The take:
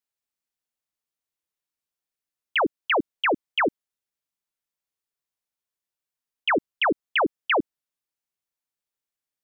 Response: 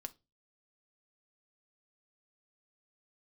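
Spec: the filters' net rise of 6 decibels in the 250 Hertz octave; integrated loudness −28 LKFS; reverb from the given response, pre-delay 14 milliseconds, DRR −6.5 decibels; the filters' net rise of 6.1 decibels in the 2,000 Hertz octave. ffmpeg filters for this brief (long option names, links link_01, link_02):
-filter_complex "[0:a]equalizer=frequency=250:width_type=o:gain=8,equalizer=frequency=2000:width_type=o:gain=7.5,asplit=2[link_01][link_02];[1:a]atrim=start_sample=2205,adelay=14[link_03];[link_02][link_03]afir=irnorm=-1:irlink=0,volume=10.5dB[link_04];[link_01][link_04]amix=inputs=2:normalize=0,volume=-15dB"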